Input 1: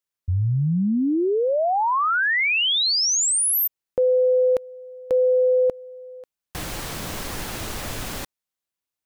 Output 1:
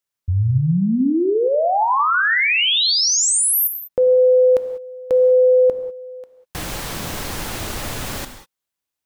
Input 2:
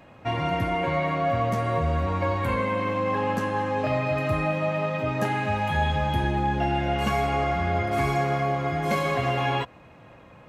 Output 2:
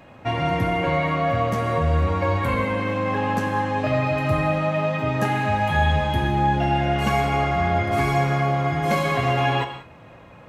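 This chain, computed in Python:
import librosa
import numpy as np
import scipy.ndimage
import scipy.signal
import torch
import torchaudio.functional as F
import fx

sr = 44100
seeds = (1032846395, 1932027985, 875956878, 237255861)

y = fx.rev_gated(x, sr, seeds[0], gate_ms=220, shape='flat', drr_db=8.0)
y = y * librosa.db_to_amplitude(3.0)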